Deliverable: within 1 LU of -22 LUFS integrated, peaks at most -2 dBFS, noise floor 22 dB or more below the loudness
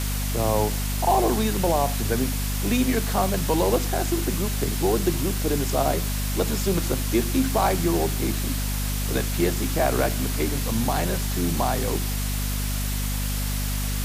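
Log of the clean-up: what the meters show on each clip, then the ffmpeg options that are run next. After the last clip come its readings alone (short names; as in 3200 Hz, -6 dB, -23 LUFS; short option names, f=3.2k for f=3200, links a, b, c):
hum 50 Hz; harmonics up to 250 Hz; hum level -24 dBFS; noise floor -26 dBFS; noise floor target -46 dBFS; loudness -24.0 LUFS; peak -8.5 dBFS; loudness target -22.0 LUFS
-> -af "bandreject=f=50:t=h:w=6,bandreject=f=100:t=h:w=6,bandreject=f=150:t=h:w=6,bandreject=f=200:t=h:w=6,bandreject=f=250:t=h:w=6"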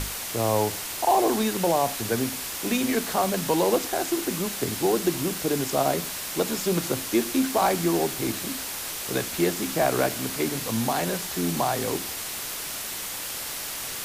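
hum none; noise floor -34 dBFS; noise floor target -48 dBFS
-> -af "afftdn=nr=14:nf=-34"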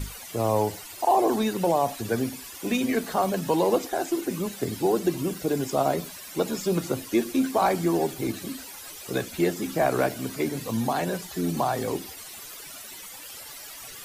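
noise floor -42 dBFS; noise floor target -49 dBFS
-> -af "afftdn=nr=7:nf=-42"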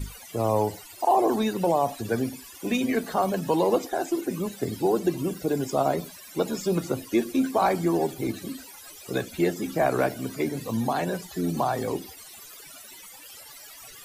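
noise floor -46 dBFS; noise floor target -49 dBFS
-> -af "afftdn=nr=6:nf=-46"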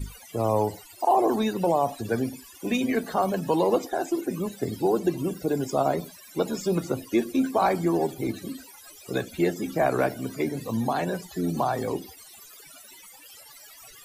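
noise floor -49 dBFS; loudness -26.5 LUFS; peak -11.0 dBFS; loudness target -22.0 LUFS
-> -af "volume=4.5dB"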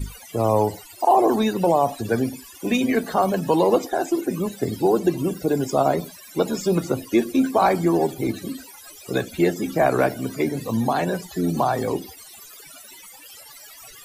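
loudness -22.0 LUFS; peak -6.5 dBFS; noise floor -44 dBFS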